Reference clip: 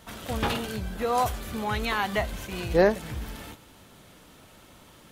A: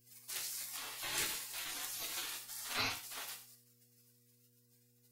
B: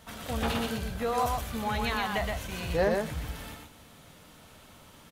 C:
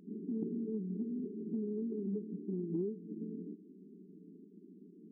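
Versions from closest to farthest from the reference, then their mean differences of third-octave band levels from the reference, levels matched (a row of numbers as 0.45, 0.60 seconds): B, A, C; 3.0, 12.5, 22.5 decibels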